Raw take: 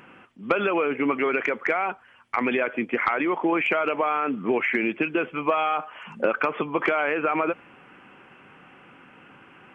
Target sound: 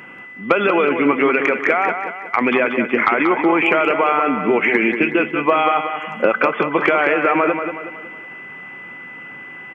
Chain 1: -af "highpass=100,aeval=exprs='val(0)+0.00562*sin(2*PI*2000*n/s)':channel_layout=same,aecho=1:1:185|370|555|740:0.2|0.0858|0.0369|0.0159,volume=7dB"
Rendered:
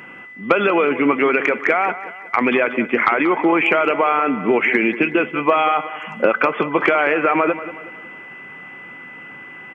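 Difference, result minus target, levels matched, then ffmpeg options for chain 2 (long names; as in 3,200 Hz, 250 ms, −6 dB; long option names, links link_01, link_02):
echo-to-direct −6.5 dB
-af "highpass=100,aeval=exprs='val(0)+0.00562*sin(2*PI*2000*n/s)':channel_layout=same,aecho=1:1:185|370|555|740|925:0.422|0.181|0.078|0.0335|0.0144,volume=7dB"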